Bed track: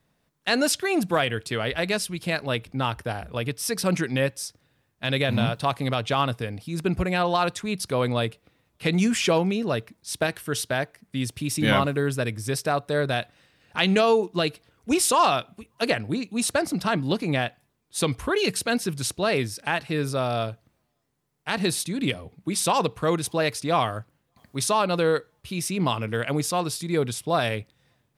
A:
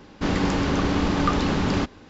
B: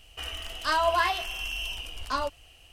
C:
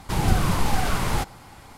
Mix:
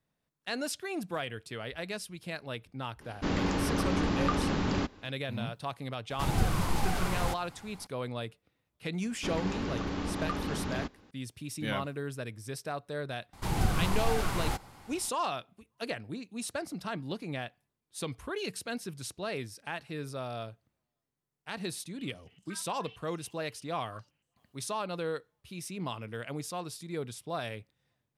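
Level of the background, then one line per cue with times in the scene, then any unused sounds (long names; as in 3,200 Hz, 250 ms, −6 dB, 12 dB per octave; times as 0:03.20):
bed track −12.5 dB
0:03.01: mix in A −7 dB
0:06.10: mix in C −7.5 dB
0:09.02: mix in A −12 dB + downsampling to 32,000 Hz
0:13.33: mix in C −7.5 dB
0:21.81: mix in B −18 dB + band-pass on a step sequencer 8.7 Hz 870–7,600 Hz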